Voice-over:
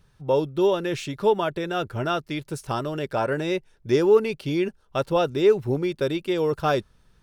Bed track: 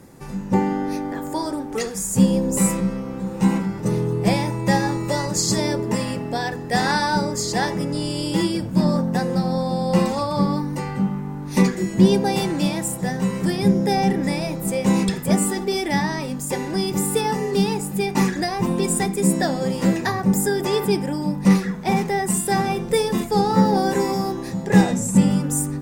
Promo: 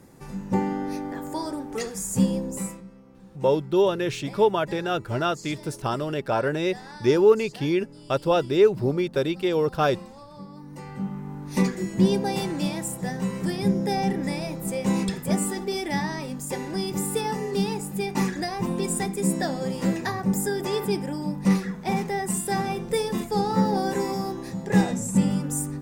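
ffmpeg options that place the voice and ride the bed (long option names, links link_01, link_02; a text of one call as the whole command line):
ffmpeg -i stem1.wav -i stem2.wav -filter_complex "[0:a]adelay=3150,volume=0.5dB[link_01];[1:a]volume=11.5dB,afade=type=out:start_time=2.18:duration=0.65:silence=0.141254,afade=type=in:start_time=10.53:duration=0.81:silence=0.149624[link_02];[link_01][link_02]amix=inputs=2:normalize=0" out.wav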